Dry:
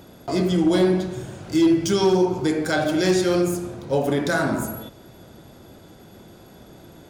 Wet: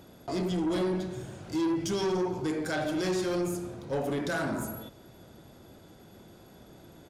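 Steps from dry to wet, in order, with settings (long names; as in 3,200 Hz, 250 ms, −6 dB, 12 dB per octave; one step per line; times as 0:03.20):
soft clipping −18 dBFS, distortion −13 dB
downsampling to 32,000 Hz
level −6.5 dB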